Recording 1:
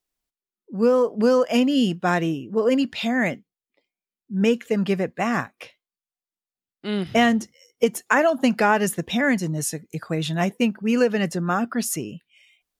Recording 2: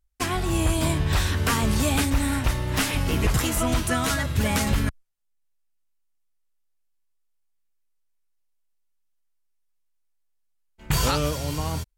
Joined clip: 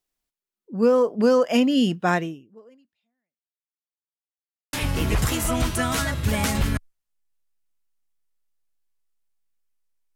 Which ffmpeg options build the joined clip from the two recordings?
-filter_complex "[0:a]apad=whole_dur=10.15,atrim=end=10.15,asplit=2[a][b];[a]atrim=end=3.85,asetpts=PTS-STARTPTS,afade=t=out:st=2.15:d=1.7:c=exp[c];[b]atrim=start=3.85:end=4.73,asetpts=PTS-STARTPTS,volume=0[d];[1:a]atrim=start=2.85:end=8.27,asetpts=PTS-STARTPTS,afade=t=in:d=0.004:c=hsin[e];[c][d][e]concat=n=3:v=0:a=1"

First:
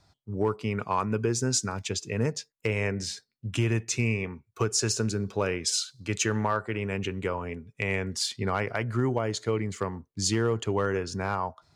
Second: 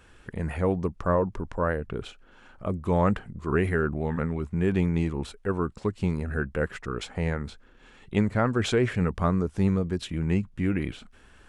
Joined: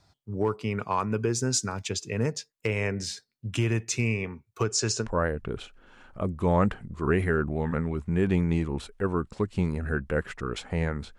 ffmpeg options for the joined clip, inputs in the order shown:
-filter_complex "[0:a]asplit=3[a][b][c];[a]afade=t=out:st=4.63:d=0.02[d];[b]lowpass=f=8.2k:w=0.5412,lowpass=f=8.2k:w=1.3066,afade=t=in:st=4.63:d=0.02,afade=t=out:st=5.08:d=0.02[e];[c]afade=t=in:st=5.08:d=0.02[f];[d][e][f]amix=inputs=3:normalize=0,apad=whole_dur=11.18,atrim=end=11.18,atrim=end=5.08,asetpts=PTS-STARTPTS[g];[1:a]atrim=start=1.45:end=7.63,asetpts=PTS-STARTPTS[h];[g][h]acrossfade=d=0.08:c1=tri:c2=tri"

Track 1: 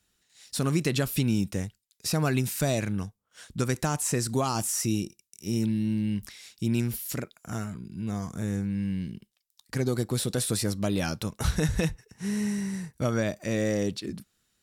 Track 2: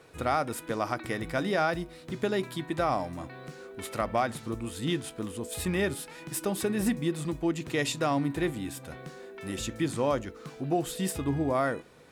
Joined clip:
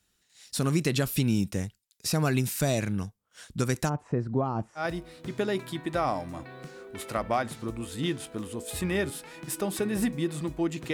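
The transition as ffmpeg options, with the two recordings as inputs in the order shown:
-filter_complex "[0:a]asplit=3[a][b][c];[a]afade=t=out:st=3.88:d=0.02[d];[b]lowpass=1k,afade=t=in:st=3.88:d=0.02,afade=t=out:st=4.87:d=0.02[e];[c]afade=t=in:st=4.87:d=0.02[f];[d][e][f]amix=inputs=3:normalize=0,apad=whole_dur=10.93,atrim=end=10.93,atrim=end=4.87,asetpts=PTS-STARTPTS[g];[1:a]atrim=start=1.59:end=7.77,asetpts=PTS-STARTPTS[h];[g][h]acrossfade=d=0.12:c1=tri:c2=tri"

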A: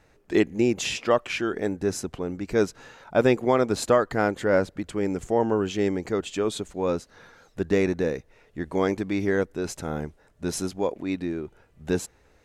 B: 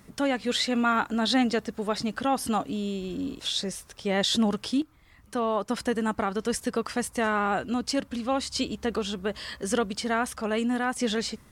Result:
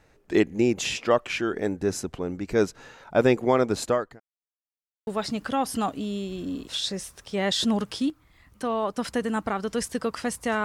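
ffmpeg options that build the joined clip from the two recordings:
-filter_complex "[0:a]apad=whole_dur=10.64,atrim=end=10.64,asplit=2[a][b];[a]atrim=end=4.2,asetpts=PTS-STARTPTS,afade=t=out:st=3.57:d=0.63:c=qsin[c];[b]atrim=start=4.2:end=5.07,asetpts=PTS-STARTPTS,volume=0[d];[1:a]atrim=start=1.79:end=7.36,asetpts=PTS-STARTPTS,afade=t=in:d=0.004:c=hsin[e];[c][d][e]concat=n=3:v=0:a=1"

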